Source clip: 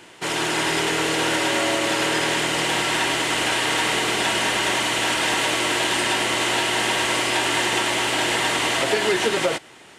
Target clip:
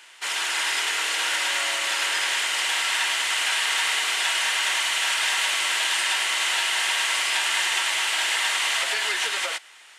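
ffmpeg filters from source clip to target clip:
ffmpeg -i in.wav -af "highpass=1300" out.wav

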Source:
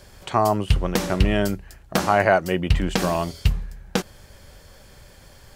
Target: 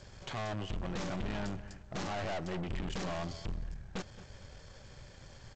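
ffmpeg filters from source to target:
ffmpeg -i in.wav -filter_complex "[0:a]equalizer=frequency=120:width=2:gain=6,aeval=exprs='(tanh(39.8*val(0)+0.55)-tanh(0.55))/39.8':channel_layout=same,asplit=2[link_01][link_02];[link_02]adelay=222,lowpass=frequency=2300:poles=1,volume=-15dB,asplit=2[link_03][link_04];[link_04]adelay=222,lowpass=frequency=2300:poles=1,volume=0.32,asplit=2[link_05][link_06];[link_06]adelay=222,lowpass=frequency=2300:poles=1,volume=0.32[link_07];[link_03][link_05][link_07]amix=inputs=3:normalize=0[link_08];[link_01][link_08]amix=inputs=2:normalize=0,volume=-3.5dB" -ar 16000 -c:a g722 out.g722

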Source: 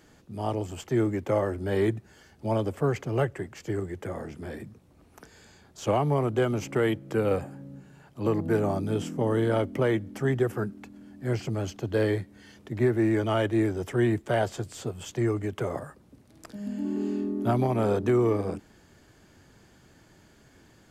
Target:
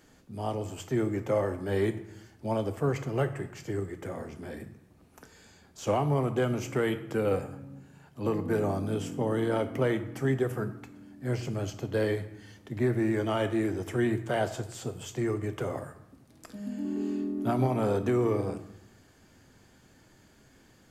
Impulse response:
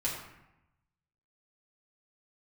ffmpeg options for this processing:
-filter_complex "[0:a]asplit=2[link_01][link_02];[1:a]atrim=start_sample=2205,highshelf=frequency=5300:gain=9[link_03];[link_02][link_03]afir=irnorm=-1:irlink=0,volume=-11.5dB[link_04];[link_01][link_04]amix=inputs=2:normalize=0,volume=-4.5dB"

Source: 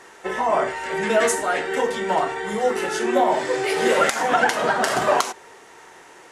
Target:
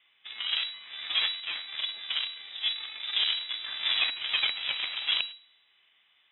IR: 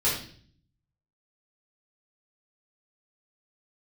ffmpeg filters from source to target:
-filter_complex "[0:a]acrossover=split=2700[link_01][link_02];[link_02]acompressor=threshold=-43dB:ratio=4:attack=1:release=60[link_03];[link_01][link_03]amix=inputs=2:normalize=0,aeval=exprs='0.562*(cos(1*acos(clip(val(0)/0.562,-1,1)))-cos(1*PI/2))+0.158*(cos(2*acos(clip(val(0)/0.562,-1,1)))-cos(2*PI/2))+0.02*(cos(3*acos(clip(val(0)/0.562,-1,1)))-cos(3*PI/2))+0.141*(cos(4*acos(clip(val(0)/0.562,-1,1)))-cos(4*PI/2))+0.0501*(cos(7*acos(clip(val(0)/0.562,-1,1)))-cos(7*PI/2))':channel_layout=same,asplit=2[link_04][link_05];[1:a]atrim=start_sample=2205[link_06];[link_05][link_06]afir=irnorm=-1:irlink=0,volume=-28dB[link_07];[link_04][link_07]amix=inputs=2:normalize=0,lowpass=frequency=3300:width_type=q:width=0.5098,lowpass=frequency=3300:width_type=q:width=0.6013,lowpass=frequency=3300:width_type=q:width=0.9,lowpass=frequency=3300:width_type=q:width=2.563,afreqshift=-3900,volume=-9dB"

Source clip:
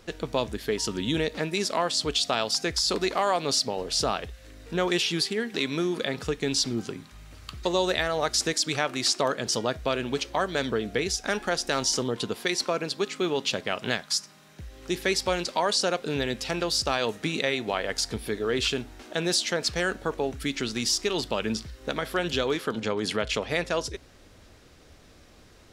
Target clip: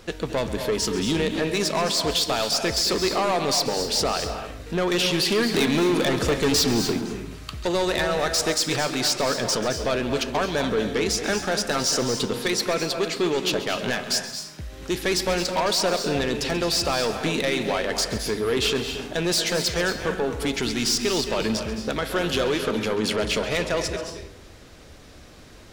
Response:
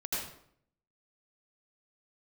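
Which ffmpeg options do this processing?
-filter_complex "[0:a]asettb=1/sr,asplit=3[link_01][link_02][link_03];[link_01]atrim=end=5.254[link_04];[link_02]atrim=start=5.25:end=6.99,asetpts=PTS-STARTPTS,afade=type=in:duration=0.004:curve=qsin,afade=type=out:start_time=1.736:duration=0.004:curve=qsin,acontrast=71[link_05];[link_03]atrim=start=6.986[link_06];[link_04][link_05]acrossfade=duration=0.004:curve1=hsin:curve2=qsin[link_07];[link_07][link_06]acrossfade=duration=0.004:curve1=qsin:curve2=hsin,asoftclip=type=tanh:threshold=-24dB,asplit=2[link_08][link_09];[1:a]atrim=start_sample=2205,adelay=135[link_10];[link_09][link_10]afir=irnorm=-1:irlink=0,volume=-10.5dB[link_11];[link_08][link_11]amix=inputs=2:normalize=0,volume=6dB"

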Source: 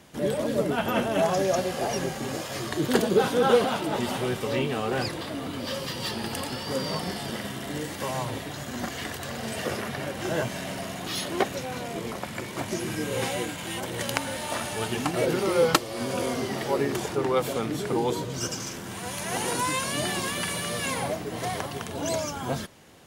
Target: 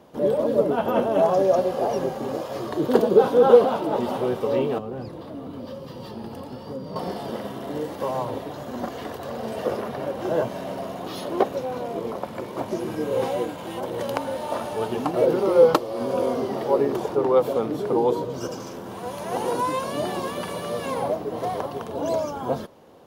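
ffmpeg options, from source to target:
ffmpeg -i in.wav -filter_complex "[0:a]equalizer=frequency=250:width_type=o:width=1:gain=4,equalizer=frequency=500:width_type=o:width=1:gain=10,equalizer=frequency=1000:width_type=o:width=1:gain=7,equalizer=frequency=2000:width_type=o:width=1:gain=-6,equalizer=frequency=8000:width_type=o:width=1:gain=-9,asettb=1/sr,asplit=3[link_01][link_02][link_03];[link_01]atrim=end=4.784[link_04];[link_02]atrim=start=4.78:end=6.96,asetpts=PTS-STARTPTS,afade=type=in:duration=0.004:curve=qsin,afade=type=out:start_time=2.176:duration=0.004:curve=qsin,acrossover=split=250[link_05][link_06];[link_06]acompressor=threshold=-38dB:ratio=2.5[link_07];[link_05][link_07]amix=inputs=2:normalize=0[link_08];[link_03]atrim=start=6.956[link_09];[link_04][link_08]acrossfade=duration=0.004:curve1=hsin:curve2=qsin[link_10];[link_10][link_09]acrossfade=duration=0.004:curve1=qsin:curve2=hsin,volume=-4dB" out.wav

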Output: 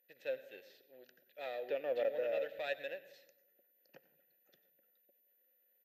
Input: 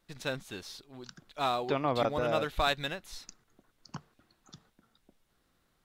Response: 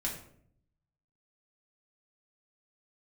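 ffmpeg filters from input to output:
-filter_complex "[0:a]aeval=exprs='if(lt(val(0),0),0.447*val(0),val(0))':channel_layout=same,highpass=frequency=250:poles=1,aeval=exprs='val(0)+0.00891*sin(2*PI*14000*n/s)':channel_layout=same,asplit=3[link_01][link_02][link_03];[link_01]bandpass=frequency=530:width_type=q:width=8,volume=0dB[link_04];[link_02]bandpass=frequency=1840:width_type=q:width=8,volume=-6dB[link_05];[link_03]bandpass=frequency=2480:width_type=q:width=8,volume=-9dB[link_06];[link_04][link_05][link_06]amix=inputs=3:normalize=0,asplit=2[link_07][link_08];[link_08]adelay=175,lowpass=frequency=800:poles=1,volume=-21dB,asplit=2[link_09][link_10];[link_10]adelay=175,lowpass=frequency=800:poles=1,volume=0.5,asplit=2[link_11][link_12];[link_12]adelay=175,lowpass=frequency=800:poles=1,volume=0.5,asplit=2[link_13][link_14];[link_14]adelay=175,lowpass=frequency=800:poles=1,volume=0.5[link_15];[link_07][link_09][link_11][link_13][link_15]amix=inputs=5:normalize=0,asplit=2[link_16][link_17];[1:a]atrim=start_sample=2205,adelay=92[link_18];[link_17][link_18]afir=irnorm=-1:irlink=0,volume=-18dB[link_19];[link_16][link_19]amix=inputs=2:normalize=0,volume=4.5dB"

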